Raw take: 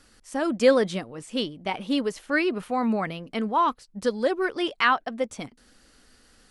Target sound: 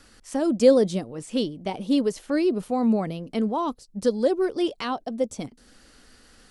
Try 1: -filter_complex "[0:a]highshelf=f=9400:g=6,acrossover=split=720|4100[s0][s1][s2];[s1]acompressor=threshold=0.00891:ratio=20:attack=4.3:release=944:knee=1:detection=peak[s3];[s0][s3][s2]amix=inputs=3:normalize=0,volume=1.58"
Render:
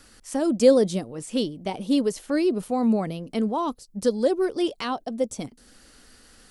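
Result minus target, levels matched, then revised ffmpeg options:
8 kHz band +3.5 dB
-filter_complex "[0:a]highshelf=f=9400:g=-3,acrossover=split=720|4100[s0][s1][s2];[s1]acompressor=threshold=0.00891:ratio=20:attack=4.3:release=944:knee=1:detection=peak[s3];[s0][s3][s2]amix=inputs=3:normalize=0,volume=1.58"

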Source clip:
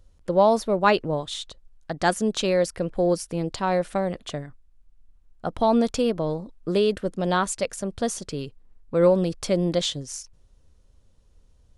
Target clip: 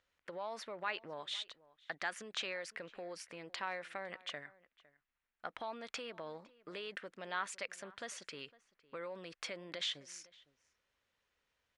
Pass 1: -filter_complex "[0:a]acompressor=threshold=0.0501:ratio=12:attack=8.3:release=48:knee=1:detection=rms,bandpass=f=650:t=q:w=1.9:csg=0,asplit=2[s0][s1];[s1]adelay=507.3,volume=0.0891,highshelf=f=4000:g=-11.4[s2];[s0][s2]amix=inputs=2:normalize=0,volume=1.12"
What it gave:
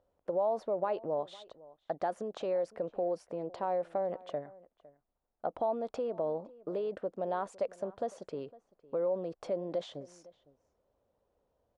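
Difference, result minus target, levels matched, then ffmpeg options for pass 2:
2 kHz band -19.0 dB
-filter_complex "[0:a]acompressor=threshold=0.0501:ratio=12:attack=8.3:release=48:knee=1:detection=rms,bandpass=f=2000:t=q:w=1.9:csg=0,asplit=2[s0][s1];[s1]adelay=507.3,volume=0.0891,highshelf=f=4000:g=-11.4[s2];[s0][s2]amix=inputs=2:normalize=0,volume=1.12"

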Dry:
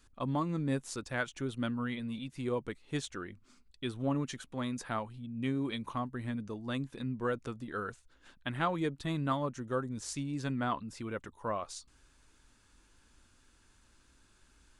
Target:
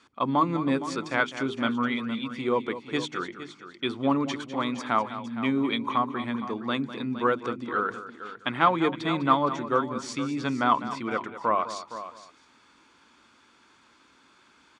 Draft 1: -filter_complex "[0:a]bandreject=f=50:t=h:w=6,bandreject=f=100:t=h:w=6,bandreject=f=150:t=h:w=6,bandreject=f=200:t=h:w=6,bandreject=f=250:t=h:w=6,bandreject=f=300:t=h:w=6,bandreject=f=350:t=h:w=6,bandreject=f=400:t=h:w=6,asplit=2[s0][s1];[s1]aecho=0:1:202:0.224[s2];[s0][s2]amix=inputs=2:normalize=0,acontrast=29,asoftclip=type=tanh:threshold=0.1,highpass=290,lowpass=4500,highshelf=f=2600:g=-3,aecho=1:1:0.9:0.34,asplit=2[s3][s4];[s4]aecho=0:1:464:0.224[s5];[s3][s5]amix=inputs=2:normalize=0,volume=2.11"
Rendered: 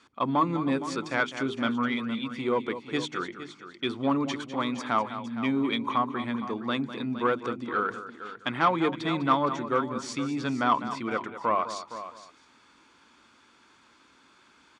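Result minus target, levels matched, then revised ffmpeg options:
saturation: distortion +20 dB
-filter_complex "[0:a]bandreject=f=50:t=h:w=6,bandreject=f=100:t=h:w=6,bandreject=f=150:t=h:w=6,bandreject=f=200:t=h:w=6,bandreject=f=250:t=h:w=6,bandreject=f=300:t=h:w=6,bandreject=f=350:t=h:w=6,bandreject=f=400:t=h:w=6,asplit=2[s0][s1];[s1]aecho=0:1:202:0.224[s2];[s0][s2]amix=inputs=2:normalize=0,acontrast=29,asoftclip=type=tanh:threshold=0.376,highpass=290,lowpass=4500,highshelf=f=2600:g=-3,aecho=1:1:0.9:0.34,asplit=2[s3][s4];[s4]aecho=0:1:464:0.224[s5];[s3][s5]amix=inputs=2:normalize=0,volume=2.11"

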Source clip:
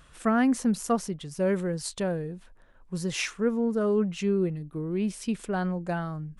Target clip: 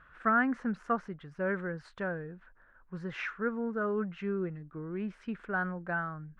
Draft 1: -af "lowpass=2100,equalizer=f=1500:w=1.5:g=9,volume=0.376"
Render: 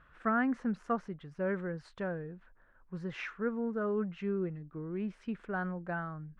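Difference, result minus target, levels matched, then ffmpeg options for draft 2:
2 kHz band -4.0 dB
-af "lowpass=2100,equalizer=f=1500:w=1.5:g=15.5,volume=0.376"

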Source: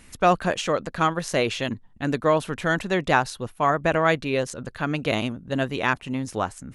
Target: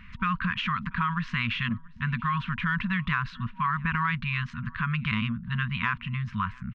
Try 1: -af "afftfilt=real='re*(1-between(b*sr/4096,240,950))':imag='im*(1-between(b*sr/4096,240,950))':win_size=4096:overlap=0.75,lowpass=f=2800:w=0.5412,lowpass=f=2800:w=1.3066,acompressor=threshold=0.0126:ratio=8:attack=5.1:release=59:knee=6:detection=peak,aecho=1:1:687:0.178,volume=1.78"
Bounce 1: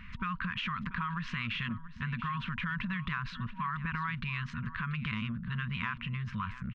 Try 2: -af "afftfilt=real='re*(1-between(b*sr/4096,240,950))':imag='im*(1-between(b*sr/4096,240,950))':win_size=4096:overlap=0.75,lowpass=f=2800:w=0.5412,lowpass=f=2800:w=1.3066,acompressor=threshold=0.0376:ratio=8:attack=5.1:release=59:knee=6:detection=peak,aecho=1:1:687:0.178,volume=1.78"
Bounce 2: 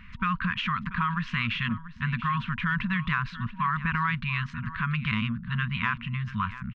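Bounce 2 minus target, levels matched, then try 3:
echo-to-direct +10.5 dB
-af "afftfilt=real='re*(1-between(b*sr/4096,240,950))':imag='im*(1-between(b*sr/4096,240,950))':win_size=4096:overlap=0.75,lowpass=f=2800:w=0.5412,lowpass=f=2800:w=1.3066,acompressor=threshold=0.0376:ratio=8:attack=5.1:release=59:knee=6:detection=peak,aecho=1:1:687:0.0531,volume=1.78"

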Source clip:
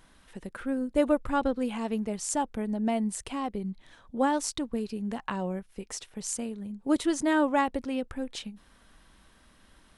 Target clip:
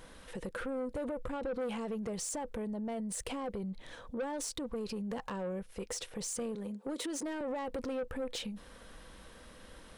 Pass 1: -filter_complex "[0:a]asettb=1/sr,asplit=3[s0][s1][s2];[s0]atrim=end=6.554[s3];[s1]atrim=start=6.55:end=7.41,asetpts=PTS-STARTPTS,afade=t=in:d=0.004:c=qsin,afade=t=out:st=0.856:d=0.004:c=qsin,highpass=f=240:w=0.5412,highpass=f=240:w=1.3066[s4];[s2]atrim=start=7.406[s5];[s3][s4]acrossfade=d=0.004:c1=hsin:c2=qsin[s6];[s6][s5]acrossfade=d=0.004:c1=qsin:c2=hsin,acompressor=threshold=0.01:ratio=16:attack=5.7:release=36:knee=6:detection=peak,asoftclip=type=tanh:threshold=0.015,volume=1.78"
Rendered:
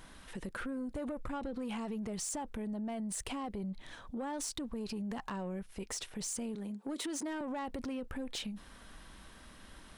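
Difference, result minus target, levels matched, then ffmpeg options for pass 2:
500 Hz band -4.5 dB
-filter_complex "[0:a]asettb=1/sr,asplit=3[s0][s1][s2];[s0]atrim=end=6.554[s3];[s1]atrim=start=6.55:end=7.41,asetpts=PTS-STARTPTS,afade=t=in:d=0.004:c=qsin,afade=t=out:st=0.856:d=0.004:c=qsin,highpass=f=240:w=0.5412,highpass=f=240:w=1.3066[s4];[s2]atrim=start=7.406[s5];[s3][s4]acrossfade=d=0.004:c1=hsin:c2=qsin[s6];[s6][s5]acrossfade=d=0.004:c1=qsin:c2=hsin,acompressor=threshold=0.01:ratio=16:attack=5.7:release=36:knee=6:detection=peak,equalizer=f=500:t=o:w=0.3:g=13,asoftclip=type=tanh:threshold=0.015,volume=1.78"

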